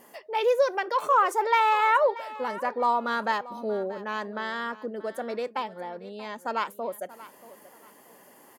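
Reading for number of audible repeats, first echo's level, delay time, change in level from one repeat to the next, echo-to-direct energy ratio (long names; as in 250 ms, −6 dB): 2, −17.5 dB, 632 ms, −11.0 dB, −17.0 dB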